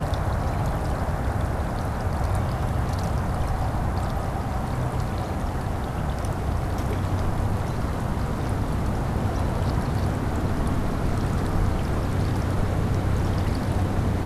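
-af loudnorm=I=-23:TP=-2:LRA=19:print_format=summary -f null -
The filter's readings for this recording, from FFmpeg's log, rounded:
Input Integrated:    -26.2 LUFS
Input True Peak:     -10.6 dBTP
Input LRA:             2.2 LU
Input Threshold:     -36.2 LUFS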